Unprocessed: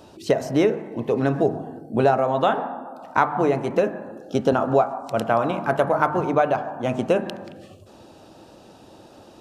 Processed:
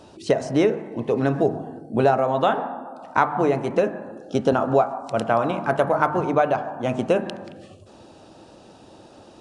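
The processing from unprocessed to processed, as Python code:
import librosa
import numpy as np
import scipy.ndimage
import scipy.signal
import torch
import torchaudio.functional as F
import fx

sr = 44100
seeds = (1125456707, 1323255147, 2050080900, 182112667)

y = fx.brickwall_lowpass(x, sr, high_hz=11000.0)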